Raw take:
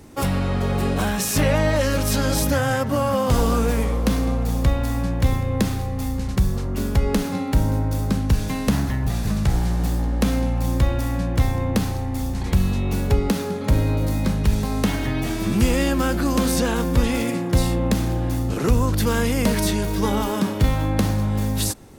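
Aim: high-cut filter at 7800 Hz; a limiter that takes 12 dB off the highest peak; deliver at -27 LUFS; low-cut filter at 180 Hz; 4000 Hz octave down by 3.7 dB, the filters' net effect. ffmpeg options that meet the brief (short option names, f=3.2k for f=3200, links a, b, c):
-af "highpass=180,lowpass=7.8k,equalizer=f=4k:t=o:g=-4.5,volume=1.5dB,alimiter=limit=-18dB:level=0:latency=1"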